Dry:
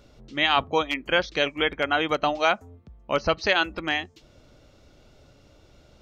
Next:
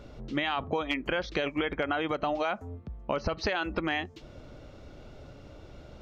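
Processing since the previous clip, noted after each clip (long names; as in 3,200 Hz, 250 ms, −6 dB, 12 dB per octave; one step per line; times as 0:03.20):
high-shelf EQ 3,500 Hz −12 dB
brickwall limiter −20 dBFS, peak gain reduction 10 dB
downward compressor, threshold −33 dBFS, peak gain reduction 8 dB
level +7 dB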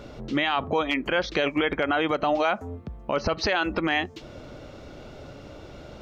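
low-shelf EQ 100 Hz −8.5 dB
brickwall limiter −22 dBFS, peak gain reduction 7 dB
level +8 dB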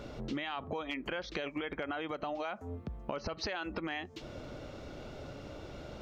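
downward compressor 10 to 1, threshold −31 dBFS, peak gain reduction 12.5 dB
level −3 dB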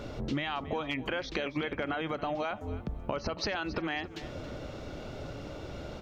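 sub-octave generator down 1 octave, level −6 dB
repeating echo 275 ms, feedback 28%, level −16 dB
level +4 dB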